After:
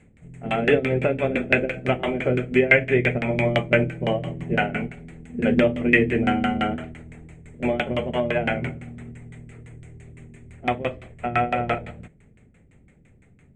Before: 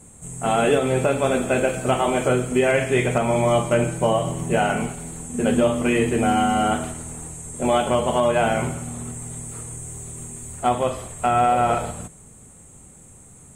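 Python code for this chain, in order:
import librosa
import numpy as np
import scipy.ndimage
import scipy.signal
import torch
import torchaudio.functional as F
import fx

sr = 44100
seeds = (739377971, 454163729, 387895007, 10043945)

y = fx.filter_lfo_lowpass(x, sr, shape='saw_down', hz=5.9, low_hz=270.0, high_hz=1700.0, q=0.84)
y = fx.high_shelf_res(y, sr, hz=1500.0, db=12.0, q=3.0)
y = fx.upward_expand(y, sr, threshold_db=-30.0, expansion=1.5)
y = F.gain(torch.from_numpy(y), 3.0).numpy()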